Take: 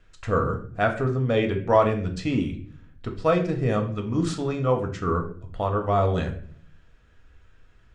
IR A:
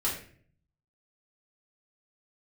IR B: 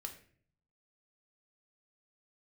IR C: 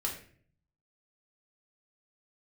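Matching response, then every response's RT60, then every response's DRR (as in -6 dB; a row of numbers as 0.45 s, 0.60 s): B; 0.50 s, 0.50 s, 0.50 s; -6.5 dB, 3.5 dB, -2.0 dB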